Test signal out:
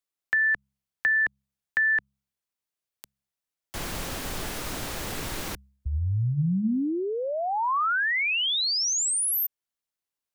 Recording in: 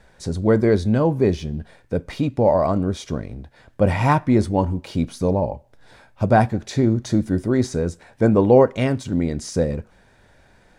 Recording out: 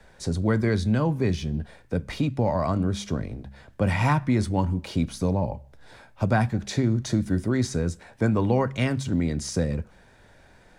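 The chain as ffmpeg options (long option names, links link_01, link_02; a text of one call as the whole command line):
ffmpeg -i in.wav -filter_complex "[0:a]bandreject=frequency=67.29:width_type=h:width=4,bandreject=frequency=134.58:width_type=h:width=4,bandreject=frequency=201.87:width_type=h:width=4,acrossover=split=120|240|1000[link_01][link_02][link_03][link_04];[link_01]acompressor=threshold=-27dB:ratio=4[link_05];[link_02]acompressor=threshold=-24dB:ratio=4[link_06];[link_03]acompressor=threshold=-31dB:ratio=4[link_07];[link_04]acompressor=threshold=-24dB:ratio=4[link_08];[link_05][link_06][link_07][link_08]amix=inputs=4:normalize=0" out.wav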